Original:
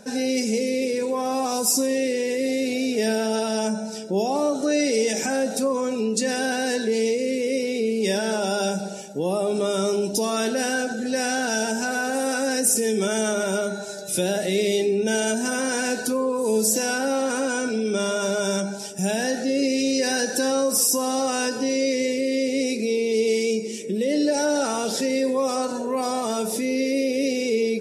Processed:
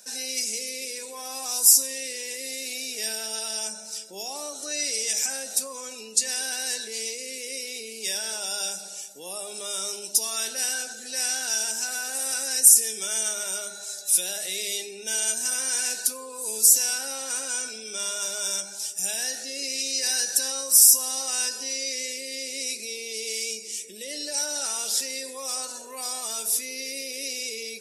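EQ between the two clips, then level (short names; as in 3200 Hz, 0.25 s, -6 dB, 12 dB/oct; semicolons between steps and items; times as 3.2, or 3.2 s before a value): differentiator; +5.5 dB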